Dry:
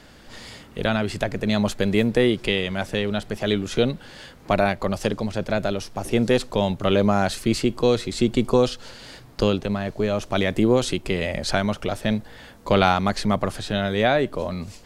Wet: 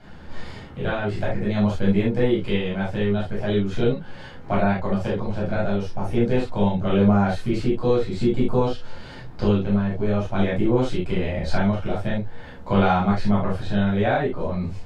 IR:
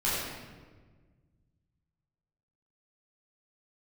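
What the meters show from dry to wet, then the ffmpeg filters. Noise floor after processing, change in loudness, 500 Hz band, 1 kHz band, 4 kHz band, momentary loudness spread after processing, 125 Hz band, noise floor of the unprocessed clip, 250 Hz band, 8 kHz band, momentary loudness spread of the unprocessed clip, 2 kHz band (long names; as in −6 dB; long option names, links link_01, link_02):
−39 dBFS, 0.0 dB, −1.5 dB, −1.0 dB, −8.5 dB, 9 LU, +3.5 dB, −47 dBFS, +1.5 dB, below −10 dB, 10 LU, −3.5 dB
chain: -filter_complex "[0:a]lowpass=frequency=1300:poles=1,asplit=2[link_01][link_02];[link_02]acompressor=threshold=-36dB:ratio=6,volume=1dB[link_03];[link_01][link_03]amix=inputs=2:normalize=0[link_04];[1:a]atrim=start_sample=2205,atrim=end_sample=3528[link_05];[link_04][link_05]afir=irnorm=-1:irlink=0,volume=-8.5dB"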